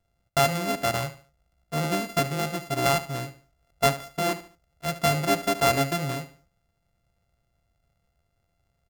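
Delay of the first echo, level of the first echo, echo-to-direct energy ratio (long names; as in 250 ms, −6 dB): 73 ms, −14.0 dB, −13.5 dB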